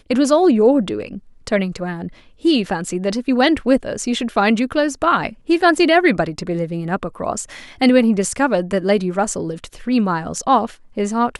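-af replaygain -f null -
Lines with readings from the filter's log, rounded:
track_gain = -3.2 dB
track_peak = 0.605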